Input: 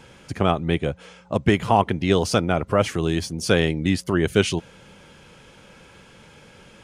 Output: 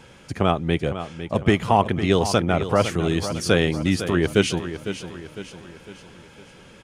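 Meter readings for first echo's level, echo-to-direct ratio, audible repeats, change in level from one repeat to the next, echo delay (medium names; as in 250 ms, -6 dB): -11.0 dB, -10.0 dB, 4, -6.5 dB, 504 ms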